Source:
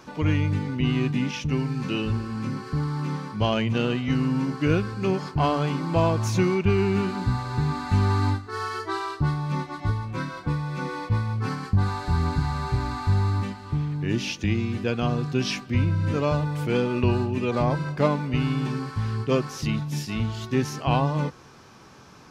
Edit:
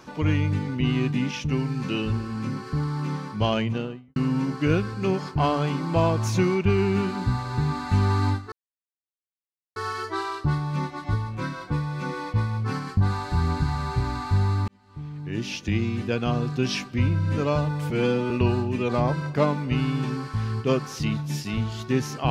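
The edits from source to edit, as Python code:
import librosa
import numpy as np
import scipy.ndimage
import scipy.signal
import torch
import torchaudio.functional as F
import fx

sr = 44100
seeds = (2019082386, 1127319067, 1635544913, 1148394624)

y = fx.studio_fade_out(x, sr, start_s=3.52, length_s=0.64)
y = fx.edit(y, sr, fx.insert_silence(at_s=8.52, length_s=1.24),
    fx.fade_in_span(start_s=13.44, length_s=1.11),
    fx.stretch_span(start_s=16.66, length_s=0.27, factor=1.5), tone=tone)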